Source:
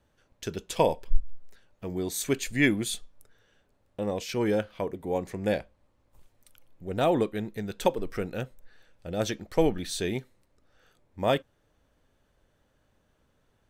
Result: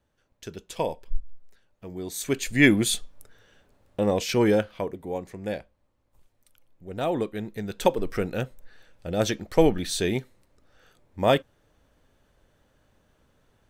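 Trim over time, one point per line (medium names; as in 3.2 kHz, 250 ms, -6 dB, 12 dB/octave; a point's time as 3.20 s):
1.95 s -4.5 dB
2.75 s +7 dB
4.36 s +7 dB
5.28 s -4 dB
6.91 s -4 dB
8.03 s +4.5 dB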